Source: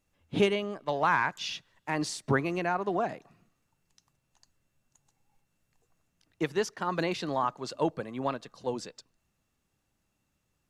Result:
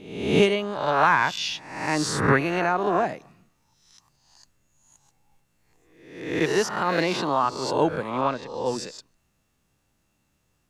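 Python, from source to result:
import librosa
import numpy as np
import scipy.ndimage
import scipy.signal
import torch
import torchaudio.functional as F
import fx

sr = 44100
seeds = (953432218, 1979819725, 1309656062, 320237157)

y = fx.spec_swells(x, sr, rise_s=0.78)
y = fx.highpass(y, sr, hz=110.0, slope=12, at=(6.81, 7.46))
y = fx.air_absorb(y, sr, metres=90.0, at=(8.21, 8.66))
y = y * 10.0 ** (4.5 / 20.0)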